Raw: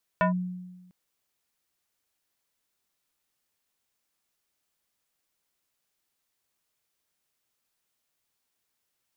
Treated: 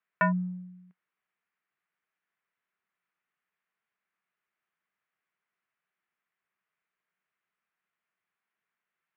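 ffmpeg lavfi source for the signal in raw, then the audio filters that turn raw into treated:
-f lavfi -i "aevalsrc='0.126*pow(10,-3*t/1.2)*sin(2*PI*181*t+1.9*clip(1-t/0.12,0,1)*sin(2*PI*4.5*181*t))':duration=0.7:sample_rate=44100"
-filter_complex "[0:a]tiltshelf=frequency=870:gain=-5.5,asplit=2[link_01][link_02];[link_02]aeval=exprs='sgn(val(0))*max(abs(val(0))-0.00398,0)':channel_layout=same,volume=-11dB[link_03];[link_01][link_03]amix=inputs=2:normalize=0,highpass=160,equalizer=frequency=180:width_type=q:width=4:gain=6,equalizer=frequency=280:width_type=q:width=4:gain=-8,equalizer=frequency=540:width_type=q:width=4:gain=-7,equalizer=frequency=850:width_type=q:width=4:gain=-5,lowpass=frequency=2100:width=0.5412,lowpass=frequency=2100:width=1.3066"

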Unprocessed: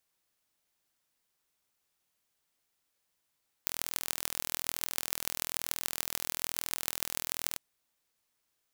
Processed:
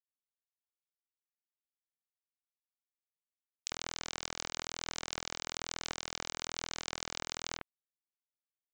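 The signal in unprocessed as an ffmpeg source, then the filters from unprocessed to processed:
-f lavfi -i "aevalsrc='0.794*eq(mod(n,1073),0)*(0.5+0.5*eq(mod(n,6438),0))':duration=3.91:sample_rate=44100"
-filter_complex "[0:a]aresample=16000,acrusher=bits=3:mix=0:aa=0.5,aresample=44100,acrossover=split=2500[link_01][link_02];[link_01]adelay=50[link_03];[link_03][link_02]amix=inputs=2:normalize=0"

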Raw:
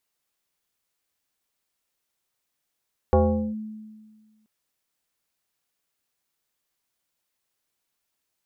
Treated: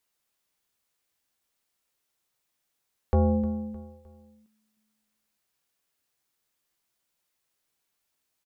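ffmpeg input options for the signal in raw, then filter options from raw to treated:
-f lavfi -i "aevalsrc='0.224*pow(10,-3*t/1.6)*sin(2*PI*216*t+2*clip(1-t/0.42,0,1)*sin(2*PI*1.38*216*t))':duration=1.33:sample_rate=44100"
-filter_complex "[0:a]acrossover=split=260[link_01][link_02];[link_02]alimiter=limit=-21dB:level=0:latency=1:release=177[link_03];[link_01][link_03]amix=inputs=2:normalize=0,asplit=2[link_04][link_05];[link_05]adelay=15,volume=-11dB[link_06];[link_04][link_06]amix=inputs=2:normalize=0,aecho=1:1:307|614|921:0.178|0.0676|0.0257"

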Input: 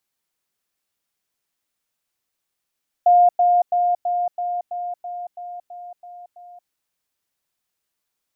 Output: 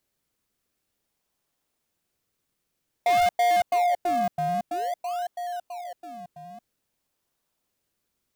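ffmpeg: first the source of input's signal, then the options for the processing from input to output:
-f lavfi -i "aevalsrc='pow(10,(-9.5-3*floor(t/0.33))/20)*sin(2*PI*708*t)*clip(min(mod(t,0.33),0.23-mod(t,0.33))/0.005,0,1)':duration=3.63:sample_rate=44100"
-filter_complex "[0:a]asplit=2[link_01][link_02];[link_02]acrusher=samples=34:mix=1:aa=0.000001:lfo=1:lforange=34:lforate=0.51,volume=-7.5dB[link_03];[link_01][link_03]amix=inputs=2:normalize=0,asoftclip=type=tanh:threshold=-19dB"

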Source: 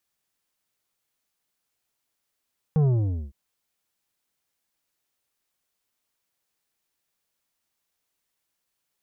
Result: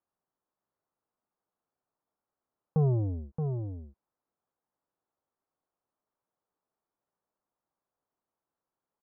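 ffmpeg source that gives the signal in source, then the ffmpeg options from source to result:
-f lavfi -i "aevalsrc='0.126*clip((0.56-t)/0.48,0,1)*tanh(2.82*sin(2*PI*160*0.56/log(65/160)*(exp(log(65/160)*t/0.56)-1)))/tanh(2.82)':duration=0.56:sample_rate=44100"
-filter_complex "[0:a]lowpass=frequency=1200:width=0.5412,lowpass=frequency=1200:width=1.3066,lowshelf=frequency=130:gain=-9,asplit=2[link_01][link_02];[link_02]aecho=0:1:624:0.473[link_03];[link_01][link_03]amix=inputs=2:normalize=0"

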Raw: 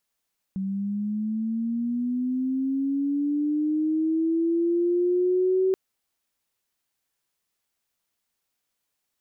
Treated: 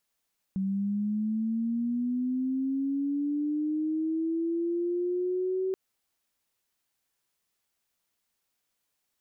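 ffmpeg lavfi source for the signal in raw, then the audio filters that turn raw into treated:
-f lavfi -i "aevalsrc='pow(10,(-25.5+7*t/5.18)/20)*sin(2*PI*(190*t+190*t*t/(2*5.18)))':duration=5.18:sample_rate=44100"
-af "alimiter=level_in=2dB:limit=-24dB:level=0:latency=1:release=93,volume=-2dB"

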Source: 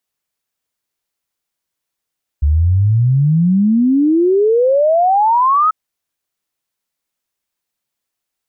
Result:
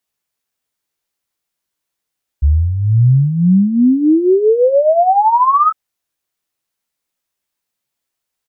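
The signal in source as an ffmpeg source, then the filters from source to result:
-f lavfi -i "aevalsrc='0.355*clip(min(t,3.29-t)/0.01,0,1)*sin(2*PI*70*3.29/log(1300/70)*(exp(log(1300/70)*t/3.29)-1))':duration=3.29:sample_rate=44100"
-filter_complex "[0:a]asplit=2[link_01][link_02];[link_02]adelay=16,volume=-6.5dB[link_03];[link_01][link_03]amix=inputs=2:normalize=0"

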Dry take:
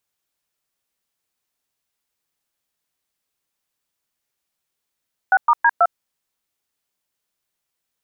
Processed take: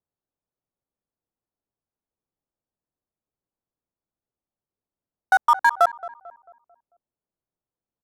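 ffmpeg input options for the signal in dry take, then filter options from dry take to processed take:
-f lavfi -i "aevalsrc='0.224*clip(min(mod(t,0.162),0.051-mod(t,0.162))/0.002,0,1)*(eq(floor(t/0.162),0)*(sin(2*PI*770*mod(t,0.162))+sin(2*PI*1477*mod(t,0.162)))+eq(floor(t/0.162),1)*(sin(2*PI*941*mod(t,0.162))+sin(2*PI*1209*mod(t,0.162)))+eq(floor(t/0.162),2)*(sin(2*PI*941*mod(t,0.162))+sin(2*PI*1633*mod(t,0.162)))+eq(floor(t/0.162),3)*(sin(2*PI*697*mod(t,0.162))+sin(2*PI*1336*mod(t,0.162))))':duration=0.648:sample_rate=44100"
-filter_complex "[0:a]lowpass=1800,adynamicsmooth=sensitivity=7.5:basefreq=810,asplit=2[link_01][link_02];[link_02]adelay=222,lowpass=frequency=1100:poles=1,volume=-15dB,asplit=2[link_03][link_04];[link_04]adelay=222,lowpass=frequency=1100:poles=1,volume=0.5,asplit=2[link_05][link_06];[link_06]adelay=222,lowpass=frequency=1100:poles=1,volume=0.5,asplit=2[link_07][link_08];[link_08]adelay=222,lowpass=frequency=1100:poles=1,volume=0.5,asplit=2[link_09][link_10];[link_10]adelay=222,lowpass=frequency=1100:poles=1,volume=0.5[link_11];[link_01][link_03][link_05][link_07][link_09][link_11]amix=inputs=6:normalize=0"

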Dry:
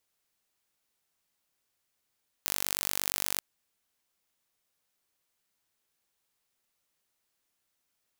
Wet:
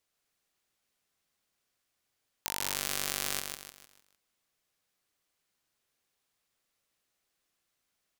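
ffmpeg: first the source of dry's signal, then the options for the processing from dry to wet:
-f lavfi -i "aevalsrc='0.708*eq(mod(n,909),0)':duration=0.94:sample_rate=44100"
-filter_complex "[0:a]highshelf=frequency=9700:gain=-6.5,bandreject=frequency=910:width=14,asplit=2[link_01][link_02];[link_02]aecho=0:1:152|304|456|608|760:0.562|0.219|0.0855|0.0334|0.013[link_03];[link_01][link_03]amix=inputs=2:normalize=0"

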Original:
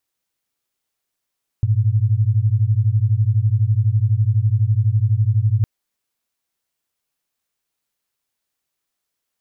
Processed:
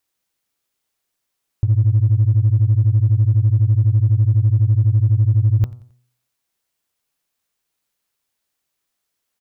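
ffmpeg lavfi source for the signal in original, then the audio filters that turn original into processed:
-f lavfi -i "aevalsrc='0.15*(sin(2*PI*102*t)+sin(2*PI*114*t))':duration=4.01:sample_rate=44100"
-filter_complex "[0:a]bandreject=frequency=123.4:width_type=h:width=4,bandreject=frequency=246.8:width_type=h:width=4,bandreject=frequency=370.2:width_type=h:width=4,bandreject=frequency=493.6:width_type=h:width=4,bandreject=frequency=617:width_type=h:width=4,bandreject=frequency=740.4:width_type=h:width=4,bandreject=frequency=863.8:width_type=h:width=4,bandreject=frequency=987.2:width_type=h:width=4,bandreject=frequency=1110.6:width_type=h:width=4,bandreject=frequency=1234:width_type=h:width=4,bandreject=frequency=1357.4:width_type=h:width=4,asplit=2[link_01][link_02];[link_02]asoftclip=type=hard:threshold=-18.5dB,volume=-9dB[link_03];[link_01][link_03]amix=inputs=2:normalize=0,aecho=1:1:89|178|267:0.0794|0.0318|0.0127"

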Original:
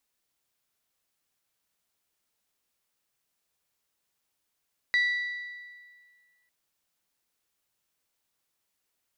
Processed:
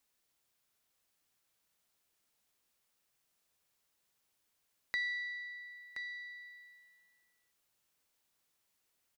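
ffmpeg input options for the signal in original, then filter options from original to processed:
-f lavfi -i "aevalsrc='0.1*pow(10,-3*t/1.81)*sin(2*PI*1960*t)+0.0282*pow(10,-3*t/1.47)*sin(2*PI*3920*t)+0.00794*pow(10,-3*t/1.392)*sin(2*PI*4704*t)+0.00224*pow(10,-3*t/1.302)*sin(2*PI*5880*t)+0.000631*pow(10,-3*t/1.194)*sin(2*PI*7840*t)':duration=1.55:sample_rate=44100"
-filter_complex "[0:a]asplit=2[link_01][link_02];[link_02]aecho=0:1:1024:0.266[link_03];[link_01][link_03]amix=inputs=2:normalize=0,acompressor=threshold=-52dB:ratio=1.5"

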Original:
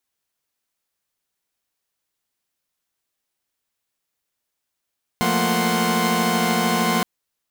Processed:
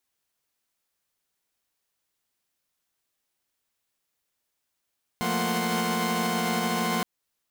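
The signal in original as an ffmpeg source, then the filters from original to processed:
-f lavfi -i "aevalsrc='0.0794*((2*mod(174.61*t,1)-1)+(2*mod(220*t,1)-1)+(2*mod(233.08*t,1)-1)+(2*mod(739.99*t,1)-1)+(2*mod(1046.5*t,1)-1))':duration=1.82:sample_rate=44100"
-af "alimiter=limit=-17.5dB:level=0:latency=1:release=233"

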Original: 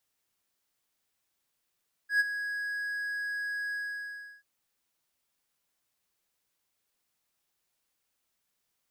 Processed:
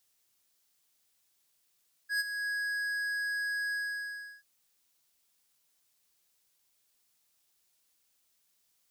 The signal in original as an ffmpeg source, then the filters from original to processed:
-f lavfi -i "aevalsrc='0.126*(1-4*abs(mod(1660*t+0.25,1)-0.5))':duration=2.337:sample_rate=44100,afade=type=in:duration=0.11,afade=type=out:start_time=0.11:duration=0.027:silence=0.266,afade=type=out:start_time=1.64:duration=0.697"
-filter_complex "[0:a]acrossover=split=3200[link_01][link_02];[link_01]alimiter=level_in=7dB:limit=-24dB:level=0:latency=1:release=270,volume=-7dB[link_03];[link_02]acontrast=89[link_04];[link_03][link_04]amix=inputs=2:normalize=0"

